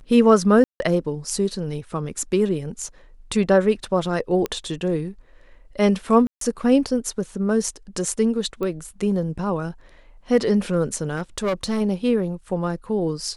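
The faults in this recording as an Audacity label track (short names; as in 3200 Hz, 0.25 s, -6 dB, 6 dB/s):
0.640000	0.800000	gap 0.16 s
4.460000	4.460000	pop -12 dBFS
6.270000	6.410000	gap 0.143 s
8.630000	8.630000	pop -17 dBFS
11.160000	11.820000	clipped -19 dBFS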